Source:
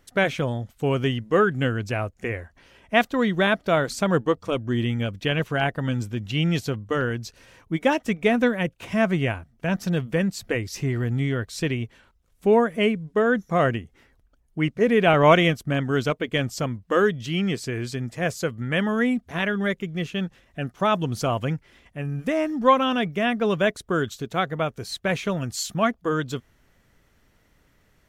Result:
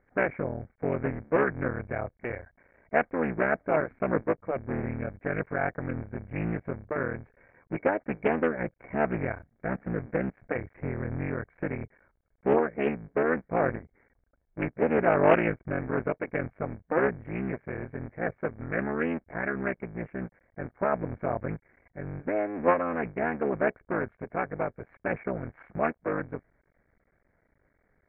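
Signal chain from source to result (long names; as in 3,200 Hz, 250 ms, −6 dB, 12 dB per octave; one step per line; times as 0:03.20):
sub-harmonics by changed cycles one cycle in 3, muted
Chebyshev low-pass with heavy ripple 2,300 Hz, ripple 6 dB
highs frequency-modulated by the lows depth 0.22 ms
level −1.5 dB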